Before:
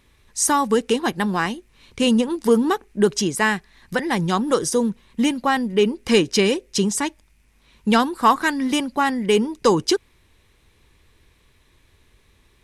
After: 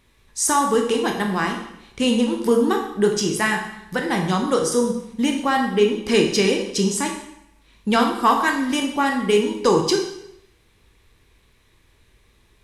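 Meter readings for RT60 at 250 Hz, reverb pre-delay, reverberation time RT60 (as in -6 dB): 0.80 s, 7 ms, 0.80 s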